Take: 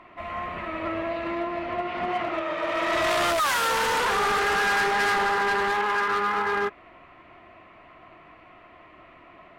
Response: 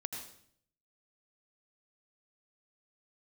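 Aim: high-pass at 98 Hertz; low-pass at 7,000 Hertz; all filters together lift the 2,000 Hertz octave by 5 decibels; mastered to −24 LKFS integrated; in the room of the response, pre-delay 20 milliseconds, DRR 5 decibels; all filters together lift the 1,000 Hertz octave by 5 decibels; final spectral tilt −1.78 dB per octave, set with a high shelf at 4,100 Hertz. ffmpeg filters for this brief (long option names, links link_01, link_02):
-filter_complex "[0:a]highpass=98,lowpass=7000,equalizer=frequency=1000:width_type=o:gain=5,equalizer=frequency=2000:width_type=o:gain=3,highshelf=frequency=4100:gain=8,asplit=2[link_01][link_02];[1:a]atrim=start_sample=2205,adelay=20[link_03];[link_02][link_03]afir=irnorm=-1:irlink=0,volume=-4.5dB[link_04];[link_01][link_04]amix=inputs=2:normalize=0,volume=-5dB"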